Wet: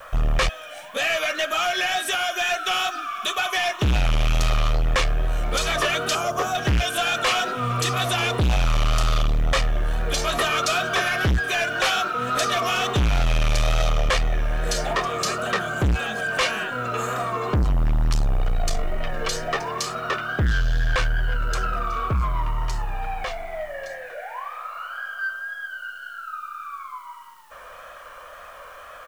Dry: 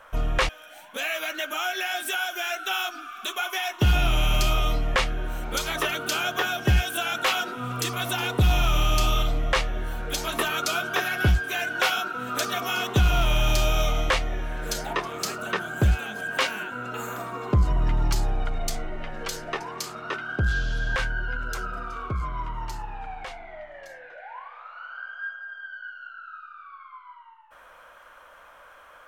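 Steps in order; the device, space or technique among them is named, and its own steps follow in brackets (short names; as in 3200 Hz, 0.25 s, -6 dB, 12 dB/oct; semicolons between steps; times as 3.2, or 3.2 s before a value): 6.15–6.55 band shelf 2600 Hz -14 dB; comb 1.7 ms, depth 45%; compact cassette (soft clip -24.5 dBFS, distortion -7 dB; LPF 9000 Hz 12 dB/oct; wow and flutter; white noise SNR 37 dB); gain +7.5 dB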